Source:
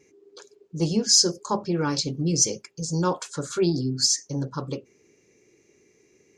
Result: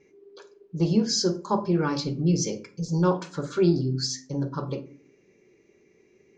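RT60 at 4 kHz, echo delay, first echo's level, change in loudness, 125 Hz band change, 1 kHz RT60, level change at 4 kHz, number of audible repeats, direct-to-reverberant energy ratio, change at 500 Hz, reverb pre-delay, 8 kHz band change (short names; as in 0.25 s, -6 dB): 0.25 s, none, none, -2.5 dB, +2.0 dB, 0.40 s, -7.0 dB, none, 6.0 dB, +1.0 dB, 5 ms, -11.0 dB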